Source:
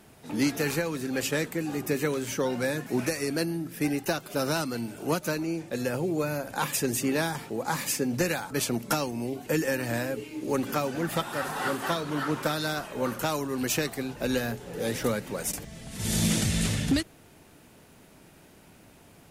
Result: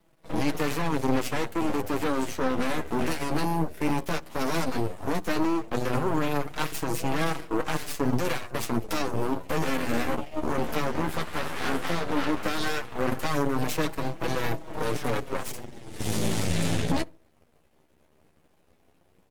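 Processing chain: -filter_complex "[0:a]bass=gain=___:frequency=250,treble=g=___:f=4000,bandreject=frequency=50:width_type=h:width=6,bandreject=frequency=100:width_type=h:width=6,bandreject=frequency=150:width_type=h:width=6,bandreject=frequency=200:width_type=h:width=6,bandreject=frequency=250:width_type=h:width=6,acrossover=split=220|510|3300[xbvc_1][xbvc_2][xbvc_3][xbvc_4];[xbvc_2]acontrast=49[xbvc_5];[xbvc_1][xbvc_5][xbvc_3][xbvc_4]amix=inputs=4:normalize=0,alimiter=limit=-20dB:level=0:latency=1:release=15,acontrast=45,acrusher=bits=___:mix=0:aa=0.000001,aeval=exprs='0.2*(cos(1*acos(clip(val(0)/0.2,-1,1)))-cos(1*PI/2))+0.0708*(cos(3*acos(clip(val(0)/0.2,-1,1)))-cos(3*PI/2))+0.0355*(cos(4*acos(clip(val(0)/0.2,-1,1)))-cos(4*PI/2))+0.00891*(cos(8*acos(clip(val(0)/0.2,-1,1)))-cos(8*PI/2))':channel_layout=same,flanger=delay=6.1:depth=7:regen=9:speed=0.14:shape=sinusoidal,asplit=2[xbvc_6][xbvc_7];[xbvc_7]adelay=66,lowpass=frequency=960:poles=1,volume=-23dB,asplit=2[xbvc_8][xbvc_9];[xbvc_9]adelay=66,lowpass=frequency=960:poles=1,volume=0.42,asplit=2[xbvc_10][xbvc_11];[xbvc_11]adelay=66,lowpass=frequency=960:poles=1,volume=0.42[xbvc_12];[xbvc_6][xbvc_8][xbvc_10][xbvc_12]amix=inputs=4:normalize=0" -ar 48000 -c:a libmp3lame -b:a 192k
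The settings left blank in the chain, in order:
5, -5, 9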